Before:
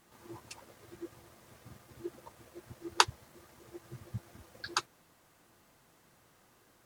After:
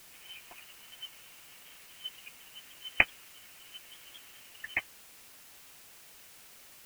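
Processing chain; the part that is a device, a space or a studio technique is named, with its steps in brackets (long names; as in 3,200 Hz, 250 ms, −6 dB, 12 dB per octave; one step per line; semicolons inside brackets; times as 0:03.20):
scrambled radio voice (band-pass filter 370–2,700 Hz; voice inversion scrambler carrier 3,400 Hz; white noise bed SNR 13 dB)
level +2.5 dB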